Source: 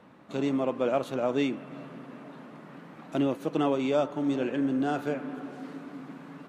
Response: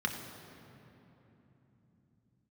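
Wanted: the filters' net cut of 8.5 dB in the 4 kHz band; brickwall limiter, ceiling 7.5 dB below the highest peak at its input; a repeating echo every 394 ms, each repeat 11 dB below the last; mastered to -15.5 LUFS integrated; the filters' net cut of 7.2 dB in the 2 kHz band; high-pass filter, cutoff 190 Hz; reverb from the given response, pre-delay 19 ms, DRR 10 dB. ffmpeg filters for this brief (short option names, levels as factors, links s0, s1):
-filter_complex "[0:a]highpass=190,equalizer=f=2000:t=o:g=-8.5,equalizer=f=4000:t=o:g=-7.5,alimiter=limit=0.0631:level=0:latency=1,aecho=1:1:394|788|1182:0.282|0.0789|0.0221,asplit=2[s0][s1];[1:a]atrim=start_sample=2205,adelay=19[s2];[s1][s2]afir=irnorm=-1:irlink=0,volume=0.15[s3];[s0][s3]amix=inputs=2:normalize=0,volume=7.5"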